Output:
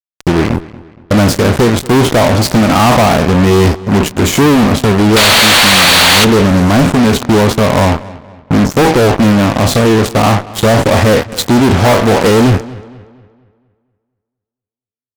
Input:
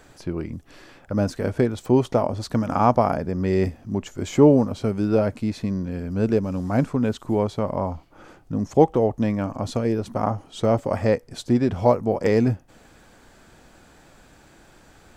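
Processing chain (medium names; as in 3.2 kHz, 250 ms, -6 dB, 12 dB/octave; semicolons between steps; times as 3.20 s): spectral sustain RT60 0.33 s; dynamic bell 530 Hz, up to -3 dB, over -29 dBFS, Q 2.2; painted sound noise, 5.16–6.25 s, 470–4700 Hz -17 dBFS; fuzz box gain 34 dB, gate -32 dBFS; filtered feedback delay 234 ms, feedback 42%, low-pass 4.2 kHz, level -19 dB; trim +7.5 dB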